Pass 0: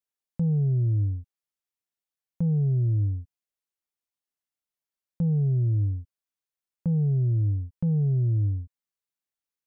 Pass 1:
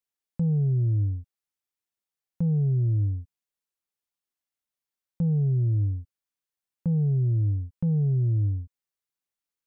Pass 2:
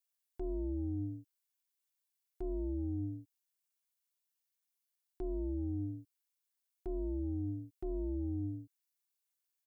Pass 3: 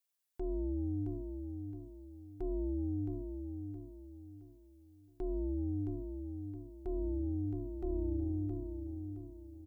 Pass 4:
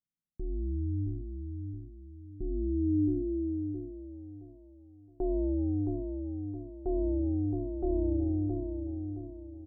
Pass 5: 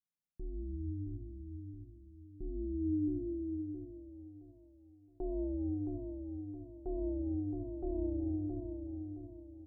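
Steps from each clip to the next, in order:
notch 640 Hz, Q 14
tilt +3 dB/oct; comb 1.6 ms, depth 83%; ring modulator 200 Hz; gain -5 dB
feedback echo 0.668 s, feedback 35%, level -6.5 dB; gain +1 dB
low-pass sweep 190 Hz -> 630 Hz, 2.14–4.57; gain +4.5 dB
reverb RT60 0.70 s, pre-delay 6 ms, DRR 13.5 dB; gain -7 dB

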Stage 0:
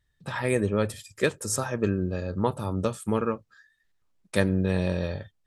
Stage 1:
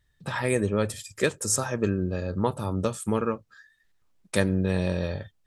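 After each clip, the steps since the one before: dynamic EQ 7100 Hz, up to +5 dB, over -49 dBFS, Q 1.2; in parallel at -1.5 dB: compressor, threshold -35 dBFS, peak gain reduction 17 dB; on the sum: gain -1.5 dB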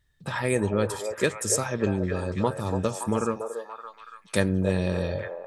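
delay with a stepping band-pass 0.284 s, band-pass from 610 Hz, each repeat 0.7 oct, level -3 dB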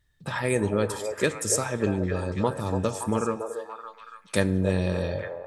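FDN reverb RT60 1.1 s, low-frequency decay 1×, high-frequency decay 0.75×, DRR 15.5 dB

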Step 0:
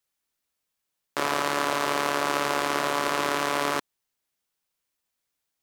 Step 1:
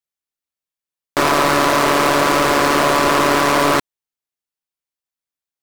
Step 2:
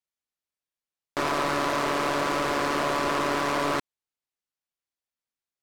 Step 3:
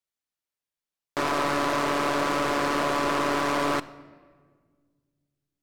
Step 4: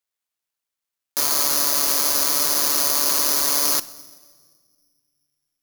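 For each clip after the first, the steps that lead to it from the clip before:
sample leveller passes 5
high shelf 11000 Hz -11 dB; limiter -18 dBFS, peak gain reduction 9.5 dB; gain -2 dB
shoebox room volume 2100 m³, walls mixed, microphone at 0.35 m
careless resampling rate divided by 8×, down none, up zero stuff; low shelf 490 Hz -5.5 dB; gain -3.5 dB

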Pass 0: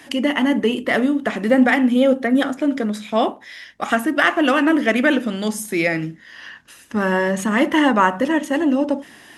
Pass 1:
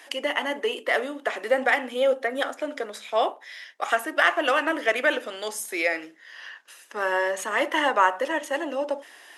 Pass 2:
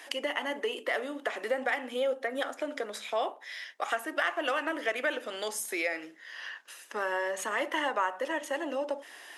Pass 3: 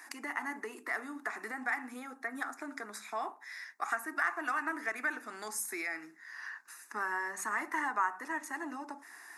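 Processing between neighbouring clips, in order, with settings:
HPF 430 Hz 24 dB/oct; gain -3.5 dB
compressor 2:1, threshold -33 dBFS, peak gain reduction 11 dB
fixed phaser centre 1300 Hz, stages 4

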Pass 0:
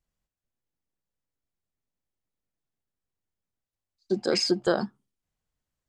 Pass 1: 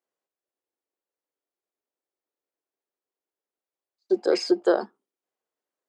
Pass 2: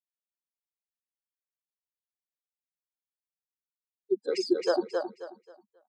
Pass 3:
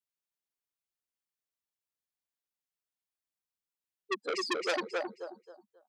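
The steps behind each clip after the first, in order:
Chebyshev high-pass 370 Hz, order 3; tilt shelf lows +6.5 dB, about 1500 Hz
per-bin expansion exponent 3; feedback echo 0.268 s, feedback 27%, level -4 dB; gain -1.5 dB
core saturation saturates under 3000 Hz

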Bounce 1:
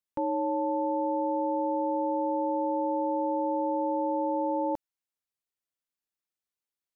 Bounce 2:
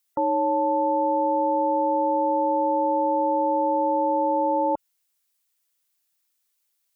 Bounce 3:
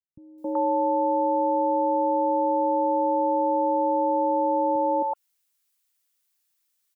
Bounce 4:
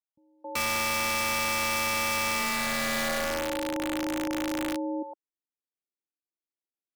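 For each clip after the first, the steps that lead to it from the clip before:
spectral gate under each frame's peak -30 dB strong; tilt +3 dB/oct; gain +8.5 dB
three bands offset in time lows, mids, highs 0.27/0.38 s, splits 190/590 Hz
band-pass sweep 870 Hz -> 320 Hz, 2.25–3.96; wrapped overs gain 23 dB; gain -1 dB

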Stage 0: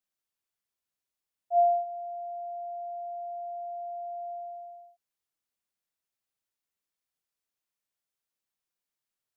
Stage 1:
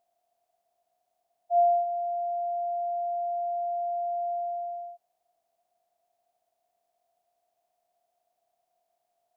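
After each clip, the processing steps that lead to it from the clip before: per-bin compression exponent 0.6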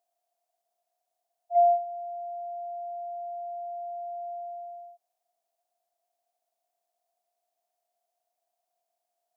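tone controls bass -14 dB, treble +5 dB; gate -24 dBFS, range -8 dB; gain +2 dB

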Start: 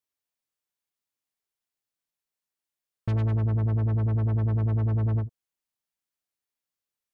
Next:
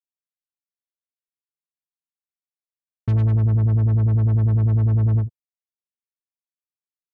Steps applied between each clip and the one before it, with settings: gate with hold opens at -22 dBFS; bell 110 Hz +7 dB 2.7 oct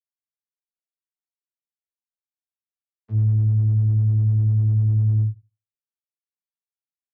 vocoder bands 32, saw 108 Hz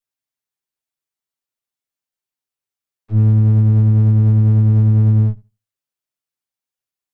minimum comb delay 7.7 ms; gain +7.5 dB

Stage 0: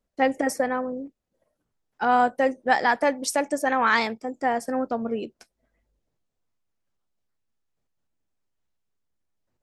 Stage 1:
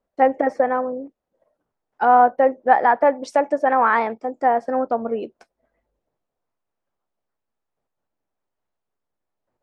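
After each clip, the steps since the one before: high shelf 5600 Hz -6.5 dB; treble ducked by the level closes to 2000 Hz, closed at -18.5 dBFS; bell 730 Hz +12.5 dB 2.7 oct; gain -5 dB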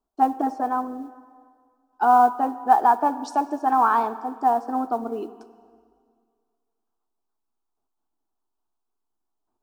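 fixed phaser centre 540 Hz, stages 6; modulation noise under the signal 35 dB; plate-style reverb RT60 2 s, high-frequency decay 0.9×, DRR 14 dB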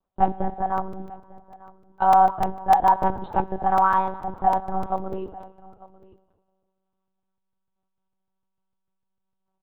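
echo 0.897 s -21 dB; monotone LPC vocoder at 8 kHz 190 Hz; crackling interface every 0.15 s, samples 128, zero, from 0.78

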